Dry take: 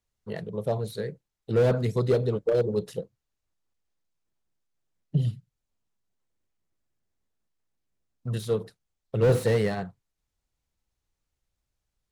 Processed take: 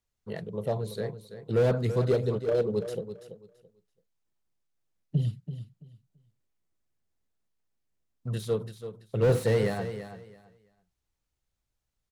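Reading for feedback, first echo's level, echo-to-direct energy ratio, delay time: 21%, -11.0 dB, -11.0 dB, 0.334 s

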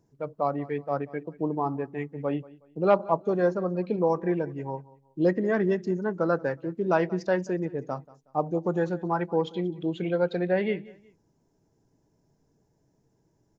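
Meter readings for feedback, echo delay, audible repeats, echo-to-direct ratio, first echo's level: 32%, 0.184 s, 2, -20.5 dB, -21.0 dB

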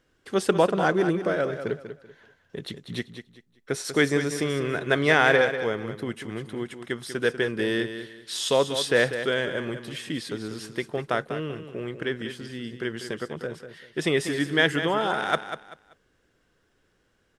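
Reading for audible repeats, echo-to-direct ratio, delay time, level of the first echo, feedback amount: 3, -9.5 dB, 0.193 s, -10.0 dB, 27%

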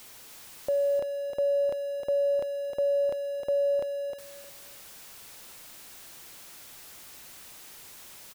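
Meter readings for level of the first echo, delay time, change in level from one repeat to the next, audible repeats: -6.0 dB, 0.309 s, -13.5 dB, 3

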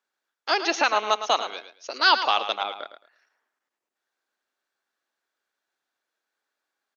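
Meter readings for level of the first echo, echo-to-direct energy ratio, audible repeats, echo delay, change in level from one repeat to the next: -10.5 dB, -10.5 dB, 2, 0.109 s, -13.5 dB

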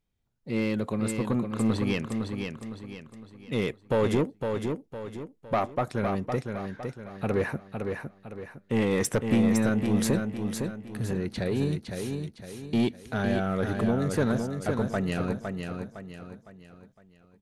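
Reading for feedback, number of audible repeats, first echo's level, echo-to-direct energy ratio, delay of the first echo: 40%, 4, -5.5 dB, -4.5 dB, 0.509 s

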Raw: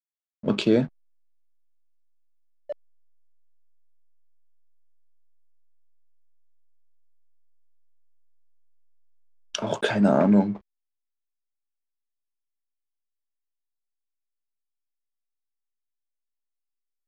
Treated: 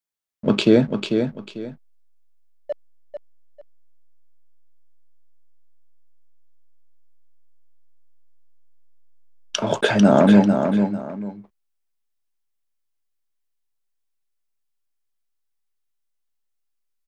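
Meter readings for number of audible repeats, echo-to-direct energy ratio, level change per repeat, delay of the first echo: 2, -6.0 dB, -11.5 dB, 0.445 s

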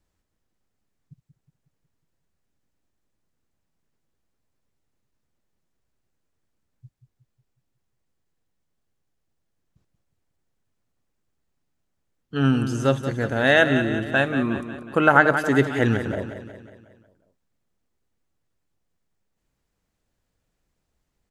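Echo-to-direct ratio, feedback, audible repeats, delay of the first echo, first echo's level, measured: -8.5 dB, 53%, 5, 0.182 s, -10.0 dB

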